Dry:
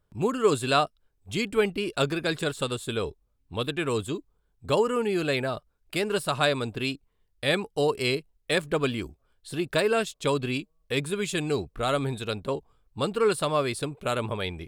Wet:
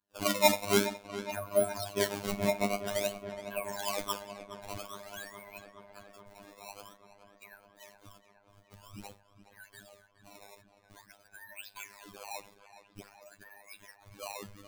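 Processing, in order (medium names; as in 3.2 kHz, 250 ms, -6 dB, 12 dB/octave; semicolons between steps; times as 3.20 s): spectrum inverted on a logarithmic axis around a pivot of 520 Hz; in parallel at -1.5 dB: compression, threshold -31 dBFS, peak gain reduction 13.5 dB; 12.46–13.07 s: on the sum: Chebyshev band-stop 570–1900 Hz, order 3; high-pass sweep 260 Hz -> 3.1 kHz, 2.31–5.49 s; rippled EQ curve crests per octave 1.5, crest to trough 16 dB; decimation with a swept rate 16×, swing 160% 0.5 Hz; Schroeder reverb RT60 0.45 s, combs from 32 ms, DRR 17 dB; gate -46 dBFS, range -11 dB; 2.32–2.86 s: small resonant body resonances 220/650/2200 Hz, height 16 dB; on a send: filtered feedback delay 419 ms, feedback 77%, low-pass 4.2 kHz, level -13 dB; on the sum: robot voice 101 Hz; treble shelf 2.9 kHz +7 dB; trim -10 dB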